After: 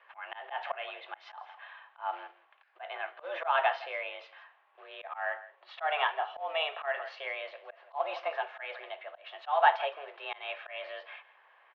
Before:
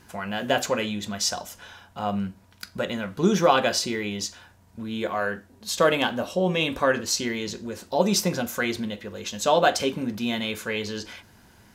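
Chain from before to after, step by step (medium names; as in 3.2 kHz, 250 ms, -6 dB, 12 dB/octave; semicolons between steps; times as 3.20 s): treble shelf 2.2 kHz -5.5 dB; delay 164 ms -18.5 dB; companded quantiser 6-bit; mistuned SSB +150 Hz 510–2900 Hz; slow attack 172 ms; trim -1 dB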